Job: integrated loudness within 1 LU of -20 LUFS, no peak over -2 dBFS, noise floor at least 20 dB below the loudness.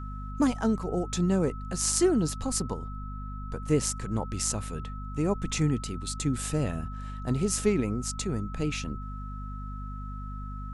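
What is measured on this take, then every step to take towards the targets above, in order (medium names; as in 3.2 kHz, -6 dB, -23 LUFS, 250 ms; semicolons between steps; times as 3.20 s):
hum 50 Hz; highest harmonic 250 Hz; hum level -34 dBFS; steady tone 1.3 kHz; tone level -43 dBFS; loudness -30.0 LUFS; peak level -7.5 dBFS; loudness target -20.0 LUFS
-> hum notches 50/100/150/200/250 Hz; band-stop 1.3 kHz, Q 30; trim +10 dB; peak limiter -2 dBFS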